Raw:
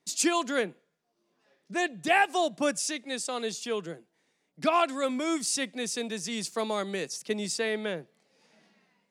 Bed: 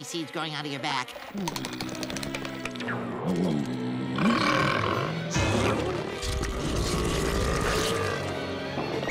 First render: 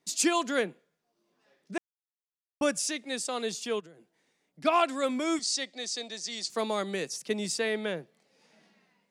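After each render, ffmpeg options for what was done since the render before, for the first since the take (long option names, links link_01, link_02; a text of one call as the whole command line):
ffmpeg -i in.wav -filter_complex "[0:a]asplit=3[link_01][link_02][link_03];[link_01]afade=type=out:start_time=3.79:duration=0.02[link_04];[link_02]acompressor=threshold=-47dB:ratio=12:attack=3.2:release=140:knee=1:detection=peak,afade=type=in:start_time=3.79:duration=0.02,afade=type=out:start_time=4.64:duration=0.02[link_05];[link_03]afade=type=in:start_time=4.64:duration=0.02[link_06];[link_04][link_05][link_06]amix=inputs=3:normalize=0,asettb=1/sr,asplit=3[link_07][link_08][link_09];[link_07]atrim=end=5.394[link_10];[link_08]atrim=start=5.39:end=6.5,asetpts=PTS-STARTPTS,afade=type=in:duration=0.004:curve=qsin,afade=type=out:start_time=1.106:duration=0.004:curve=qsin,highpass=430,equalizer=frequency=440:width_type=q:width=4:gain=-6,equalizer=frequency=1000:width_type=q:width=4:gain=-8,equalizer=frequency=1500:width_type=q:width=4:gain=-8,equalizer=frequency=2600:width_type=q:width=4:gain=-7,equalizer=frequency=4400:width_type=q:width=4:gain=7,lowpass=frequency=7600:width=0.5412,lowpass=frequency=7600:width=1.3066[link_11];[link_09]atrim=start=6.496[link_12];[link_10][link_11]acrossfade=duration=0.004:curve1=hsin:curve2=qsin[link_13];[link_13][link_12]acrossfade=duration=0.004:curve1=qsin:curve2=hsin,asplit=3[link_14][link_15][link_16];[link_14]atrim=end=1.78,asetpts=PTS-STARTPTS,afade=type=out:start_time=1.776:duration=0.004:curve=hsin[link_17];[link_15]atrim=start=1.78:end=2.61,asetpts=PTS-STARTPTS,volume=0[link_18];[link_16]atrim=start=2.61,asetpts=PTS-STARTPTS,afade=type=in:duration=0.004:curve=hsin[link_19];[link_17][link_18][link_19]concat=n=3:v=0:a=1" out.wav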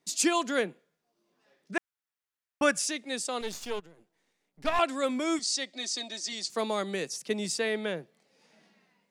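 ffmpeg -i in.wav -filter_complex "[0:a]asettb=1/sr,asplit=3[link_01][link_02][link_03];[link_01]atrim=end=1.734[link_04];[link_02]atrim=start=1.73:end=2.85,asetpts=PTS-STARTPTS,afade=type=in:duration=0.004:curve=qsin,afade=type=out:start_time=1.116:duration=0.004:curve=qsin,equalizer=frequency=1600:width=0.96:gain=8.5[link_05];[link_03]atrim=start=2.846[link_06];[link_04][link_05]acrossfade=duration=0.004:curve1=hsin:curve2=qsin[link_07];[link_07][link_06]acrossfade=duration=0.004:curve1=qsin:curve2=hsin,asettb=1/sr,asplit=3[link_08][link_09][link_10];[link_08]atrim=end=3.414[link_11];[link_09]atrim=start=3.41:end=4.79,asetpts=PTS-STARTPTS,afade=type=in:duration=0.004:curve=qsin,afade=type=out:start_time=1.376:duration=0.004:curve=qsin,aeval=exprs='if(lt(val(0),0),0.251*val(0),val(0))':channel_layout=same[link_12];[link_10]atrim=start=4.786[link_13];[link_11][link_12]acrossfade=duration=0.004:curve1=hsin:curve2=qsin[link_14];[link_14][link_13]acrossfade=duration=0.004:curve1=qsin:curve2=hsin,asettb=1/sr,asplit=3[link_15][link_16][link_17];[link_15]atrim=end=5.734[link_18];[link_16]atrim=start=5.73:end=6.33,asetpts=PTS-STARTPTS,afade=type=in:duration=0.004:curve=qsin,afade=type=out:start_time=0.596:duration=0.004:curve=qsin,aecho=1:1:3.2:0.66,atrim=end_sample=26460[link_19];[link_17]atrim=start=6.326[link_20];[link_18][link_19]acrossfade=duration=0.004:curve1=hsin:curve2=qsin[link_21];[link_21][link_20]acrossfade=duration=0.004:curve1=qsin:curve2=hsin" out.wav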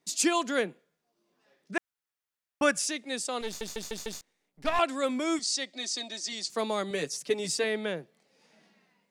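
ffmpeg -i in.wav -filter_complex "[0:a]asettb=1/sr,asplit=3[link_01][link_02][link_03];[link_01]atrim=end=6.904[link_04];[link_02]atrim=start=6.9:end=7.64,asetpts=PTS-STARTPTS,afade=type=in:duration=0.004:curve=qsin,afade=type=out:start_time=0.736:duration=0.004:curve=qsin,aecho=1:1:7:0.65,atrim=end_sample=32634[link_05];[link_03]atrim=start=7.636[link_06];[link_04][link_05]acrossfade=duration=0.004:curve1=hsin:curve2=qsin[link_07];[link_07][link_06]acrossfade=duration=0.004:curve1=qsin:curve2=hsin,asplit=6[link_08][link_09][link_10][link_11][link_12][link_13];[link_08]atrim=end=3.612[link_14];[link_09]atrim=start=3.458:end=3.612[link_15];[link_10]atrim=start=3.458:end=3.612[link_16];[link_11]atrim=start=3.458:end=3.612[link_17];[link_12]atrim=start=3.458:end=3.612[link_18];[link_13]atrim=start=4.208[link_19];[link_14][link_15]acrossfade=duration=0.004:curve1=hsin:curve2=hsin[link_20];[link_20][link_16]acrossfade=duration=0.004:curve1=hsin:curve2=hsin[link_21];[link_21][link_17]acrossfade=duration=0.004:curve1=hsin:curve2=hsin[link_22];[link_22][link_18]acrossfade=duration=0.004:curve1=hsin:curve2=hsin[link_23];[link_23][link_19]acrossfade=duration=0.004:curve1=hsin:curve2=hsin" out.wav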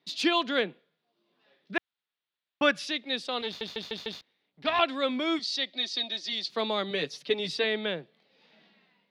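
ffmpeg -i in.wav -af "highpass=82,highshelf=frequency=5400:width_type=q:width=3:gain=-14" out.wav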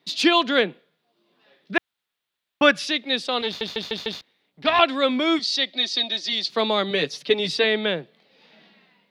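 ffmpeg -i in.wav -af "volume=7.5dB" out.wav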